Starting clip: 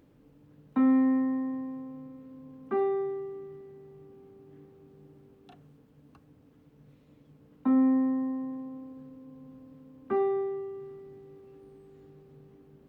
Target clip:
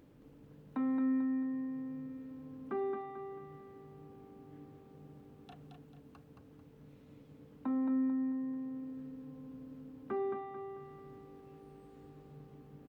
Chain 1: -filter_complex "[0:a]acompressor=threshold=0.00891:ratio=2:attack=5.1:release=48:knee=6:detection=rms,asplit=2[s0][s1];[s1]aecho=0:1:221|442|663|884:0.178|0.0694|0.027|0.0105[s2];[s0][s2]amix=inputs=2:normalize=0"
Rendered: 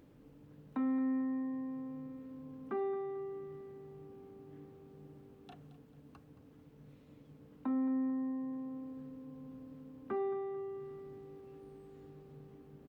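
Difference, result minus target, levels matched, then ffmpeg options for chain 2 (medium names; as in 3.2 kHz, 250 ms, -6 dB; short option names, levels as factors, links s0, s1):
echo-to-direct -10 dB
-filter_complex "[0:a]acompressor=threshold=0.00891:ratio=2:attack=5.1:release=48:knee=6:detection=rms,asplit=2[s0][s1];[s1]aecho=0:1:221|442|663|884|1105:0.562|0.219|0.0855|0.0334|0.013[s2];[s0][s2]amix=inputs=2:normalize=0"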